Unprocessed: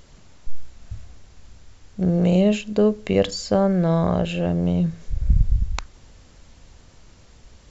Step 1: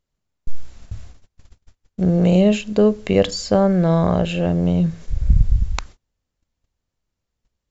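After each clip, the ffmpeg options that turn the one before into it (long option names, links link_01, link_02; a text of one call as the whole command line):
ffmpeg -i in.wav -af "agate=range=-33dB:threshold=-39dB:ratio=16:detection=peak,volume=3dB" out.wav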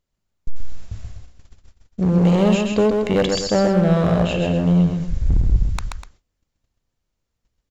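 ffmpeg -i in.wav -af "asoftclip=type=hard:threshold=-12dB,aecho=1:1:131.2|247.8:0.631|0.251" out.wav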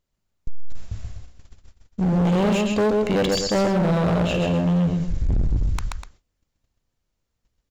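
ffmpeg -i in.wav -af "asoftclip=type=hard:threshold=-17dB" out.wav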